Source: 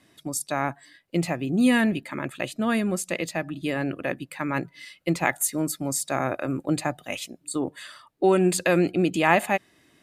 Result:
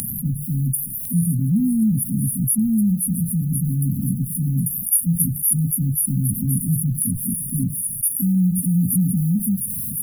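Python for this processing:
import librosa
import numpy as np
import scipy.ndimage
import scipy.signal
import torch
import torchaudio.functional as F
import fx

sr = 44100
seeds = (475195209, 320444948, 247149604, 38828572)

p1 = fx.spec_delay(x, sr, highs='early', ms=492)
p2 = fx.mod_noise(p1, sr, seeds[0], snr_db=34)
p3 = fx.brickwall_bandstop(p2, sr, low_hz=250.0, high_hz=9500.0)
p4 = p3 + fx.echo_wet_highpass(p3, sr, ms=526, feedback_pct=58, hz=1600.0, wet_db=-10.5, dry=0)
p5 = fx.hpss(p4, sr, part='percussive', gain_db=6)
p6 = fx.env_flatten(p5, sr, amount_pct=70)
y = F.gain(torch.from_numpy(p6), 4.5).numpy()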